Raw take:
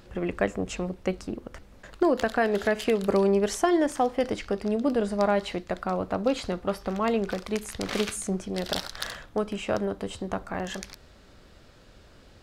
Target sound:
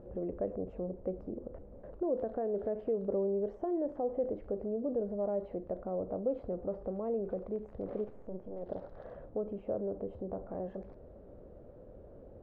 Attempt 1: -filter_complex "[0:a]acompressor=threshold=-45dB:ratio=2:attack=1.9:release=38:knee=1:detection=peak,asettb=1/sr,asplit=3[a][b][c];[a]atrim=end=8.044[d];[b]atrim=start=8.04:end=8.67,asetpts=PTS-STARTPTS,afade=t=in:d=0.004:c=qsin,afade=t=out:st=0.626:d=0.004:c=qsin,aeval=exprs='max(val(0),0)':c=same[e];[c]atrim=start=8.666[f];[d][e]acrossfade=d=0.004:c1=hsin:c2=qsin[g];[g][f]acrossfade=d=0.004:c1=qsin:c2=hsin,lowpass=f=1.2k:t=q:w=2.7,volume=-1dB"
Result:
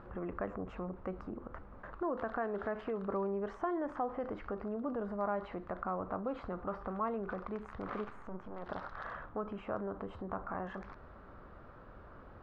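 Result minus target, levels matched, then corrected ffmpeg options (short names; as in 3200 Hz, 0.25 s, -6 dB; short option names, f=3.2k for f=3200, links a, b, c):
1000 Hz band +10.0 dB
-filter_complex "[0:a]acompressor=threshold=-45dB:ratio=2:attack=1.9:release=38:knee=1:detection=peak,asettb=1/sr,asplit=3[a][b][c];[a]atrim=end=8.044[d];[b]atrim=start=8.04:end=8.67,asetpts=PTS-STARTPTS,afade=t=in:d=0.004:c=qsin,afade=t=out:st=0.626:d=0.004:c=qsin,aeval=exprs='max(val(0),0)':c=same[e];[c]atrim=start=8.666[f];[d][e]acrossfade=d=0.004:c1=hsin:c2=qsin[g];[g][f]acrossfade=d=0.004:c1=qsin:c2=hsin,lowpass=f=540:t=q:w=2.7,volume=-1dB"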